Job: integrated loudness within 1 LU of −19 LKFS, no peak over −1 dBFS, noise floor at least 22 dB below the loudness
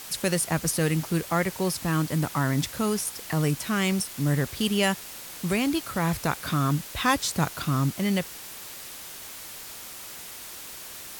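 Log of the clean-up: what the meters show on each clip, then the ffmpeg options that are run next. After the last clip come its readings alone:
background noise floor −41 dBFS; target noise floor −49 dBFS; integrated loudness −26.5 LKFS; sample peak −10.0 dBFS; target loudness −19.0 LKFS
→ -af "afftdn=noise_reduction=8:noise_floor=-41"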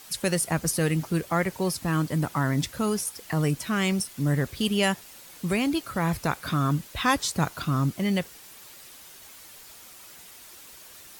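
background noise floor −48 dBFS; target noise floor −49 dBFS
→ -af "afftdn=noise_reduction=6:noise_floor=-48"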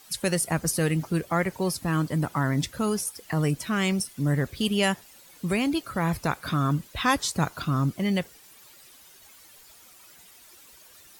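background noise floor −52 dBFS; integrated loudness −26.5 LKFS; sample peak −10.0 dBFS; target loudness −19.0 LKFS
→ -af "volume=7.5dB"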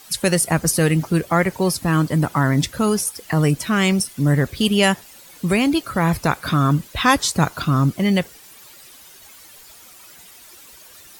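integrated loudness −19.0 LKFS; sample peak −2.5 dBFS; background noise floor −45 dBFS

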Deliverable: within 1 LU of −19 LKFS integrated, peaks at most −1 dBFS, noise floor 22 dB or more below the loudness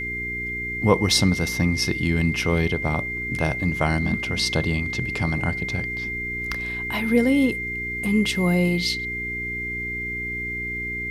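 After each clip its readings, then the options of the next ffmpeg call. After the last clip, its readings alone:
mains hum 60 Hz; hum harmonics up to 420 Hz; level of the hum −33 dBFS; interfering tone 2,100 Hz; level of the tone −27 dBFS; integrated loudness −23.0 LKFS; sample peak −3.5 dBFS; target loudness −19.0 LKFS
→ -af "bandreject=frequency=60:width_type=h:width=4,bandreject=frequency=120:width_type=h:width=4,bandreject=frequency=180:width_type=h:width=4,bandreject=frequency=240:width_type=h:width=4,bandreject=frequency=300:width_type=h:width=4,bandreject=frequency=360:width_type=h:width=4,bandreject=frequency=420:width_type=h:width=4"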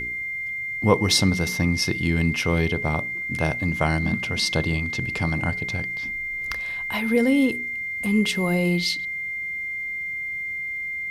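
mains hum none found; interfering tone 2,100 Hz; level of the tone −27 dBFS
→ -af "bandreject=frequency=2100:width=30"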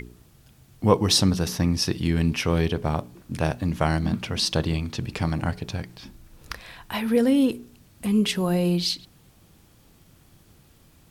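interfering tone none found; integrated loudness −24.0 LKFS; sample peak −3.0 dBFS; target loudness −19.0 LKFS
→ -af "volume=5dB,alimiter=limit=-1dB:level=0:latency=1"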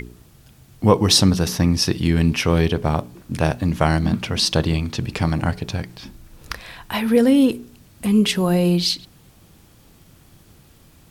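integrated loudness −19.0 LKFS; sample peak −1.0 dBFS; background noise floor −51 dBFS

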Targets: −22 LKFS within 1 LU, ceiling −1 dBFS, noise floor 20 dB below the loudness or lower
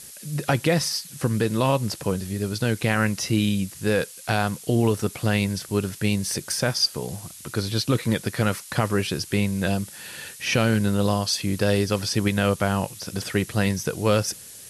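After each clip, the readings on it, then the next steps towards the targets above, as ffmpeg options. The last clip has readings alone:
background noise floor −43 dBFS; target noise floor −44 dBFS; integrated loudness −24.0 LKFS; sample peak −8.5 dBFS; target loudness −22.0 LKFS
→ -af "afftdn=noise_reduction=6:noise_floor=-43"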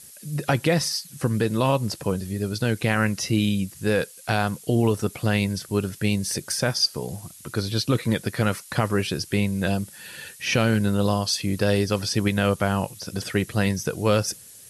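background noise floor −46 dBFS; integrated loudness −24.0 LKFS; sample peak −9.0 dBFS; target loudness −22.0 LKFS
→ -af "volume=2dB"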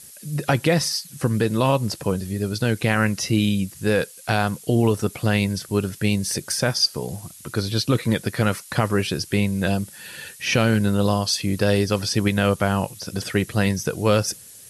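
integrated loudness −22.0 LKFS; sample peak −7.0 dBFS; background noise floor −44 dBFS

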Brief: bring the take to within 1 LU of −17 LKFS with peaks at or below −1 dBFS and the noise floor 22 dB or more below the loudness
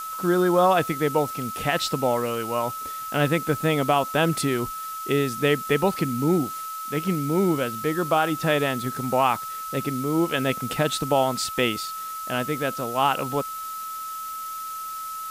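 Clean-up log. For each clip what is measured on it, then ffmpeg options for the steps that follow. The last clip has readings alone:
interfering tone 1,300 Hz; level of the tone −31 dBFS; background noise floor −33 dBFS; target noise floor −47 dBFS; integrated loudness −24.5 LKFS; sample peak −8.5 dBFS; target loudness −17.0 LKFS
→ -af "bandreject=frequency=1300:width=30"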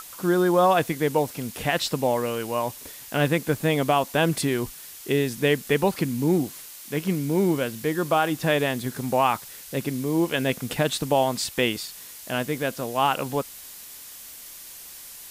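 interfering tone none found; background noise floor −42 dBFS; target noise floor −47 dBFS
→ -af "afftdn=noise_reduction=6:noise_floor=-42"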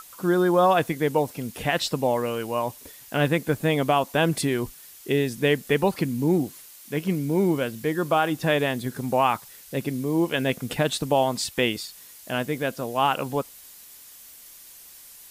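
background noise floor −47 dBFS; integrated loudness −24.5 LKFS; sample peak −9.0 dBFS; target loudness −17.0 LKFS
→ -af "volume=7.5dB"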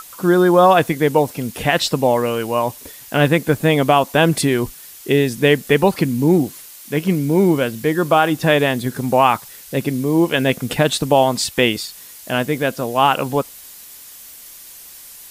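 integrated loudness −17.0 LKFS; sample peak −1.5 dBFS; background noise floor −40 dBFS

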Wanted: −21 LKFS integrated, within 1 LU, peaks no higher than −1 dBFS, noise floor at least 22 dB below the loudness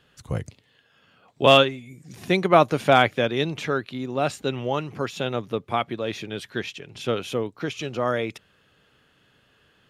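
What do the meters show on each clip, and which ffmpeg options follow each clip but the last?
integrated loudness −23.5 LKFS; sample peak −2.5 dBFS; target loudness −21.0 LKFS
→ -af "volume=2.5dB,alimiter=limit=-1dB:level=0:latency=1"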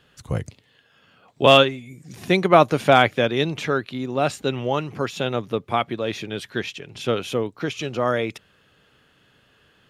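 integrated loudness −21.5 LKFS; sample peak −1.0 dBFS; background noise floor −60 dBFS

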